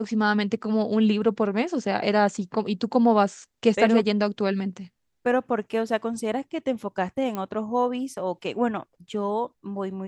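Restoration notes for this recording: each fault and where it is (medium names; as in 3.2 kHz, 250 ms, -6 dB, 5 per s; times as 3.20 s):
7.35 s: pop -17 dBFS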